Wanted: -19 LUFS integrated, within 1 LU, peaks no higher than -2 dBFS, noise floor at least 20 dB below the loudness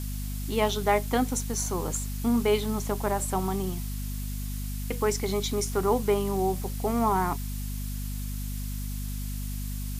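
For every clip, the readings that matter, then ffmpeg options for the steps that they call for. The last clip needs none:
hum 50 Hz; harmonics up to 250 Hz; hum level -30 dBFS; noise floor -33 dBFS; noise floor target -49 dBFS; loudness -29.0 LUFS; peak -9.5 dBFS; loudness target -19.0 LUFS
-> -af "bandreject=f=50:t=h:w=4,bandreject=f=100:t=h:w=4,bandreject=f=150:t=h:w=4,bandreject=f=200:t=h:w=4,bandreject=f=250:t=h:w=4"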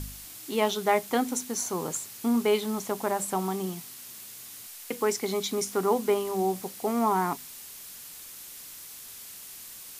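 hum none; noise floor -45 dBFS; noise floor target -49 dBFS
-> -af "afftdn=nr=6:nf=-45"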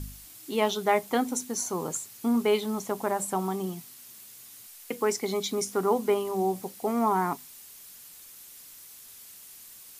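noise floor -49 dBFS; loudness -28.5 LUFS; peak -10.5 dBFS; loudness target -19.0 LUFS
-> -af "volume=9.5dB,alimiter=limit=-2dB:level=0:latency=1"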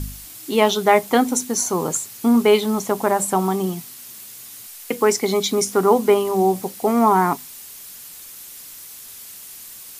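loudness -19.0 LUFS; peak -2.0 dBFS; noise floor -39 dBFS

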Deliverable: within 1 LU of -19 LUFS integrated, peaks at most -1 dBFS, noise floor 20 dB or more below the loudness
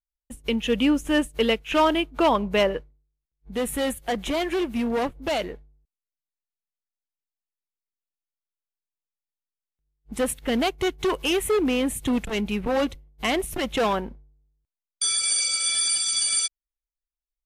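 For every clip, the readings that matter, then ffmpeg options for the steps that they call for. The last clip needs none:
loudness -24.0 LUFS; peak -11.5 dBFS; loudness target -19.0 LUFS
-> -af "volume=5dB"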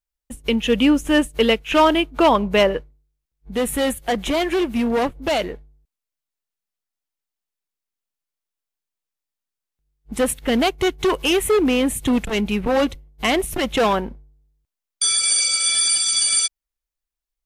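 loudness -19.0 LUFS; peak -6.5 dBFS; noise floor -86 dBFS

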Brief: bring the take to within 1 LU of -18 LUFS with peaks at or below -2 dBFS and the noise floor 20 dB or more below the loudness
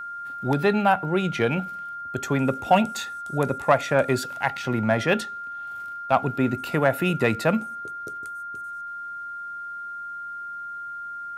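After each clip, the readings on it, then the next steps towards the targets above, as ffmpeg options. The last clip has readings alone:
steady tone 1400 Hz; tone level -32 dBFS; loudness -25.5 LUFS; peak -6.5 dBFS; loudness target -18.0 LUFS
-> -af "bandreject=f=1.4k:w=30"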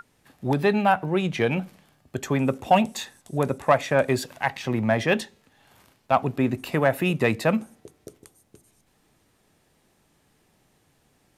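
steady tone none; loudness -24.0 LUFS; peak -7.0 dBFS; loudness target -18.0 LUFS
-> -af "volume=6dB,alimiter=limit=-2dB:level=0:latency=1"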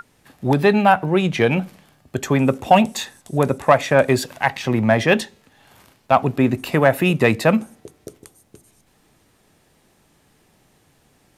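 loudness -18.5 LUFS; peak -2.0 dBFS; noise floor -60 dBFS

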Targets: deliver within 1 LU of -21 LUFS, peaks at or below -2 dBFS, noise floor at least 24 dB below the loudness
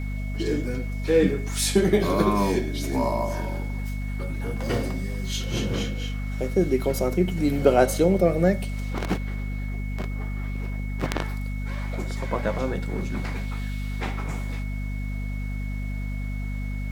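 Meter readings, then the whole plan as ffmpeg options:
hum 50 Hz; harmonics up to 250 Hz; hum level -27 dBFS; steady tone 2200 Hz; tone level -42 dBFS; loudness -26.5 LUFS; peak -4.5 dBFS; loudness target -21.0 LUFS
-> -af "bandreject=f=50:t=h:w=6,bandreject=f=100:t=h:w=6,bandreject=f=150:t=h:w=6,bandreject=f=200:t=h:w=6,bandreject=f=250:t=h:w=6"
-af "bandreject=f=2.2k:w=30"
-af "volume=5.5dB,alimiter=limit=-2dB:level=0:latency=1"

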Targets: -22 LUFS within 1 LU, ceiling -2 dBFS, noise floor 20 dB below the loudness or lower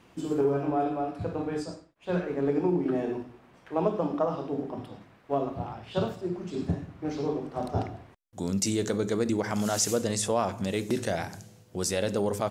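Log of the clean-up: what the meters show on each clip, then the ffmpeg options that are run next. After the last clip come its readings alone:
loudness -30.0 LUFS; peak -11.0 dBFS; loudness target -22.0 LUFS
-> -af "volume=8dB"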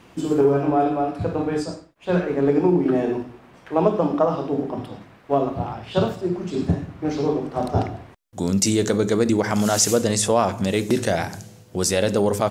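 loudness -22.0 LUFS; peak -3.0 dBFS; noise floor -50 dBFS

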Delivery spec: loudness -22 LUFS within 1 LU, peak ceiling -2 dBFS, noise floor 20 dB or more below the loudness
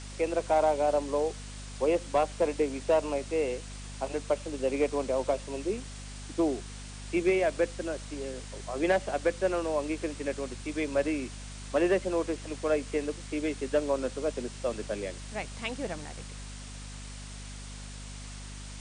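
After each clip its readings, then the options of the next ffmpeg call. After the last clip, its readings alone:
hum 50 Hz; harmonics up to 250 Hz; hum level -41 dBFS; noise floor -42 dBFS; noise floor target -51 dBFS; loudness -30.5 LUFS; peak -16.0 dBFS; loudness target -22.0 LUFS
-> -af "bandreject=f=50:t=h:w=6,bandreject=f=100:t=h:w=6,bandreject=f=150:t=h:w=6,bandreject=f=200:t=h:w=6,bandreject=f=250:t=h:w=6"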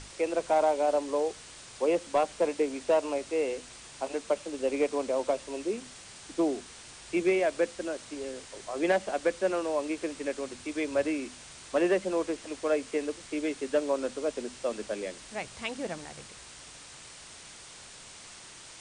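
hum none; noise floor -49 dBFS; noise floor target -51 dBFS
-> -af "afftdn=nr=6:nf=-49"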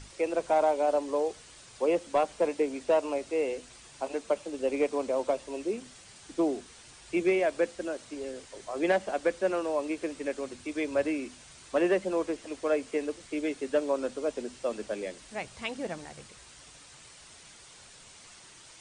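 noise floor -53 dBFS; loudness -30.5 LUFS; peak -16.5 dBFS; loudness target -22.0 LUFS
-> -af "volume=8.5dB"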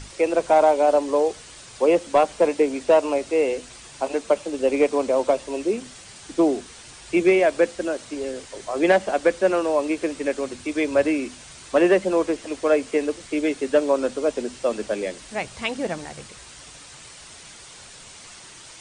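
loudness -22.0 LUFS; peak -8.0 dBFS; noise floor -44 dBFS

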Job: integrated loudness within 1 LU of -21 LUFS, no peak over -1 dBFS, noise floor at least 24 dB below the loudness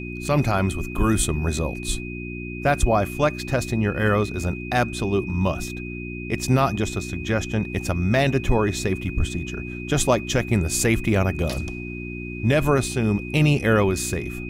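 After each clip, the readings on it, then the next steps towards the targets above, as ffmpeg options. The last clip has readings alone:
hum 60 Hz; harmonics up to 360 Hz; hum level -30 dBFS; steady tone 2500 Hz; tone level -36 dBFS; loudness -23.0 LUFS; peak -6.5 dBFS; loudness target -21.0 LUFS
-> -af "bandreject=f=60:t=h:w=4,bandreject=f=120:t=h:w=4,bandreject=f=180:t=h:w=4,bandreject=f=240:t=h:w=4,bandreject=f=300:t=h:w=4,bandreject=f=360:t=h:w=4"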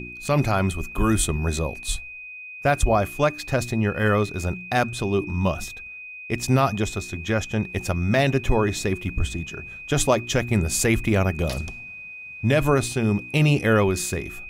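hum none; steady tone 2500 Hz; tone level -36 dBFS
-> -af "bandreject=f=2.5k:w=30"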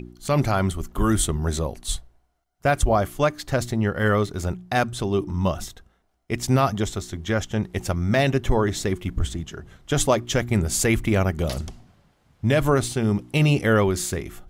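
steady tone none; loudness -23.5 LUFS; peak -6.5 dBFS; loudness target -21.0 LUFS
-> -af "volume=2.5dB"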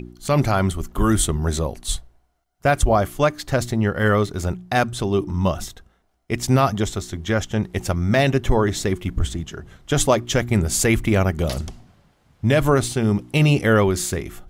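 loudness -21.0 LUFS; peak -4.0 dBFS; noise floor -63 dBFS

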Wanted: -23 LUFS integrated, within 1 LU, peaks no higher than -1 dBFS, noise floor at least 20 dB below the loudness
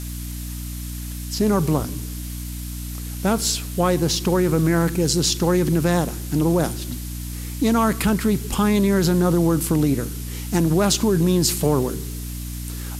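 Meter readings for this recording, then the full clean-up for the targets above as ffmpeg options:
hum 60 Hz; harmonics up to 300 Hz; hum level -29 dBFS; noise floor -30 dBFS; noise floor target -41 dBFS; loudness -21.0 LUFS; peak -6.0 dBFS; loudness target -23.0 LUFS
-> -af "bandreject=f=60:t=h:w=6,bandreject=f=120:t=h:w=6,bandreject=f=180:t=h:w=6,bandreject=f=240:t=h:w=6,bandreject=f=300:t=h:w=6"
-af "afftdn=nr=11:nf=-30"
-af "volume=-2dB"

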